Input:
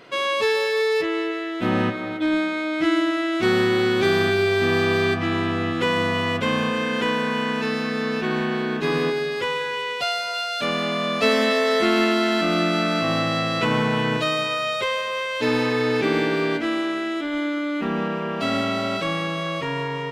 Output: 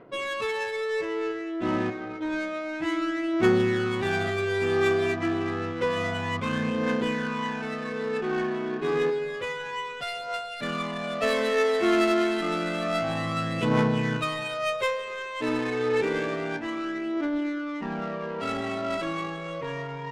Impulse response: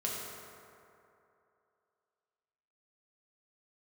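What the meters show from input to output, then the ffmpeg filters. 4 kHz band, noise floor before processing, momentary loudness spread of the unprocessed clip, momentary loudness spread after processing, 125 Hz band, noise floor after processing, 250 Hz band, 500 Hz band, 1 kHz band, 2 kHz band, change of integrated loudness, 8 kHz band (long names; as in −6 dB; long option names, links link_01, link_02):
−10.0 dB, −28 dBFS, 6 LU, 9 LU, −4.5 dB, −35 dBFS, −5.0 dB, −4.5 dB, −5.5 dB, −6.5 dB, −5.5 dB, −5.5 dB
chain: -af "aphaser=in_gain=1:out_gain=1:delay=3.1:decay=0.52:speed=0.29:type=triangular,adynamicsmooth=sensitivity=1.5:basefreq=1300,volume=-6dB"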